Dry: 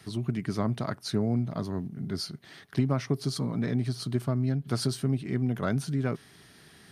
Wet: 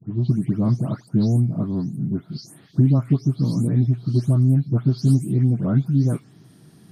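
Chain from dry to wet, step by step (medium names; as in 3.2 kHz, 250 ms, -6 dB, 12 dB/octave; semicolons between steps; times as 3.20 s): delay that grows with frequency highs late, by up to 298 ms; ten-band graphic EQ 125 Hz +10 dB, 250 Hz +10 dB, 2 kHz -9 dB, 4 kHz -4 dB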